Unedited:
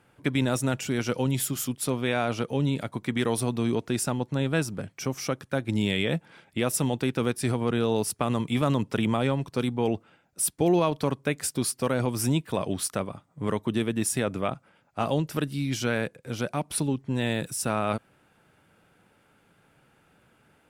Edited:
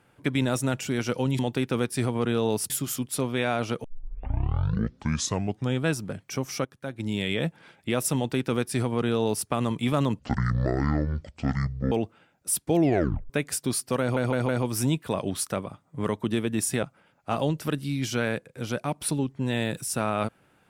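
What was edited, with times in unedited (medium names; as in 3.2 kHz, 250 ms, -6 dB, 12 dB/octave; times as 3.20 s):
2.53 s: tape start 2.00 s
5.34–6.17 s: fade in, from -12.5 dB
6.85–8.16 s: copy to 1.39 s
8.88–9.83 s: speed 55%
10.68 s: tape stop 0.53 s
11.92 s: stutter 0.16 s, 4 plays
14.26–14.52 s: delete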